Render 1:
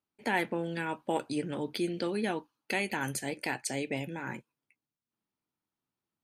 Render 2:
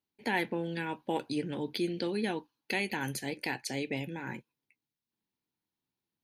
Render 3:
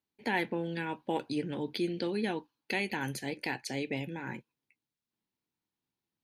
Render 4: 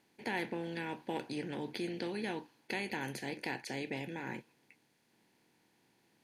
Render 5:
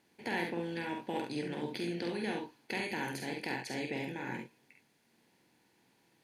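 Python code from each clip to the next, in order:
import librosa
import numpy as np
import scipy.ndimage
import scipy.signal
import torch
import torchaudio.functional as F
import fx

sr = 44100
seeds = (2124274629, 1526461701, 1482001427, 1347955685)

y1 = fx.graphic_eq_31(x, sr, hz=(630, 1250, 4000, 8000), db=(-6, -9, 4, -11))
y2 = fx.high_shelf(y1, sr, hz=7200.0, db=-6.0)
y3 = fx.bin_compress(y2, sr, power=0.6)
y3 = F.gain(torch.from_numpy(y3), -8.0).numpy()
y4 = fx.room_early_taps(y3, sr, ms=(47, 69), db=(-5.0, -6.5))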